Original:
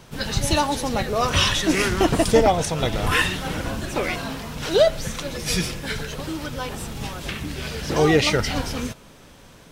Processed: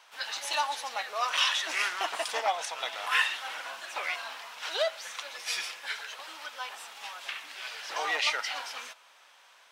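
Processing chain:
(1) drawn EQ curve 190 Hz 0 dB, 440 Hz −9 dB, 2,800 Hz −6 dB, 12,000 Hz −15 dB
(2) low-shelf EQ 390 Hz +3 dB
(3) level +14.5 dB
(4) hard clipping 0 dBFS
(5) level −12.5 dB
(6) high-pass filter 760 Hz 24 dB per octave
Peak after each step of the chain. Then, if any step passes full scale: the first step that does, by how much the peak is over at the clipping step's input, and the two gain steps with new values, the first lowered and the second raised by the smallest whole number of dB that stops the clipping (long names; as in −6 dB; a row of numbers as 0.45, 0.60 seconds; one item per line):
−9.0, −7.0, +7.5, 0.0, −12.5, −12.0 dBFS
step 3, 7.5 dB
step 3 +6.5 dB, step 5 −4.5 dB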